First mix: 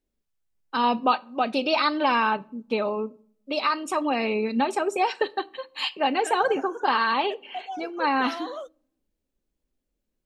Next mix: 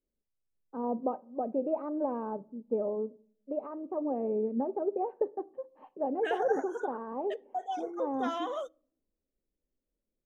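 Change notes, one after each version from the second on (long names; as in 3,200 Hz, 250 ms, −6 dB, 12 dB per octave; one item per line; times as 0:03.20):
first voice: add transistor ladder low-pass 690 Hz, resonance 35%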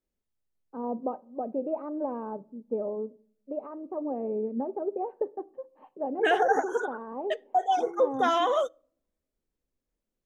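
second voice +10.5 dB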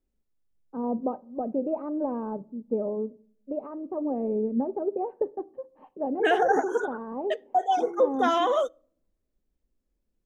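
second voice: add Butterworth high-pass 180 Hz 48 dB per octave
master: add low-shelf EQ 220 Hz +12 dB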